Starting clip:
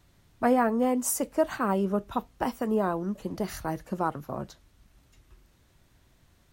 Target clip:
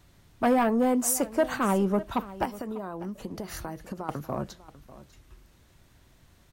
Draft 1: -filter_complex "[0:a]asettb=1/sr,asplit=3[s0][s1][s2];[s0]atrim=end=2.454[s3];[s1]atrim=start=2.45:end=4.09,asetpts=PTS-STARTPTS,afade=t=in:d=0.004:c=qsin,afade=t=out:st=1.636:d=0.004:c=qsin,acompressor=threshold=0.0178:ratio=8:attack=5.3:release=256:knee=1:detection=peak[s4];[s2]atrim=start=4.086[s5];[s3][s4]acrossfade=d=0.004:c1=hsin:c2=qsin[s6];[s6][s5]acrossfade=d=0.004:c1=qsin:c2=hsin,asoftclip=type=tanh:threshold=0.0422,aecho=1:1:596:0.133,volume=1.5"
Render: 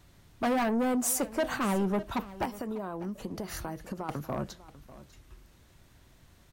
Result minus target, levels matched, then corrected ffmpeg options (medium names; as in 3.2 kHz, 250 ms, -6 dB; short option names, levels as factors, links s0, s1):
saturation: distortion +7 dB
-filter_complex "[0:a]asettb=1/sr,asplit=3[s0][s1][s2];[s0]atrim=end=2.454[s3];[s1]atrim=start=2.45:end=4.09,asetpts=PTS-STARTPTS,afade=t=in:d=0.004:c=qsin,afade=t=out:st=1.636:d=0.004:c=qsin,acompressor=threshold=0.0178:ratio=8:attack=5.3:release=256:knee=1:detection=peak[s4];[s2]atrim=start=4.086[s5];[s3][s4]acrossfade=d=0.004:c1=hsin:c2=qsin[s6];[s6][s5]acrossfade=d=0.004:c1=qsin:c2=hsin,asoftclip=type=tanh:threshold=0.106,aecho=1:1:596:0.133,volume=1.5"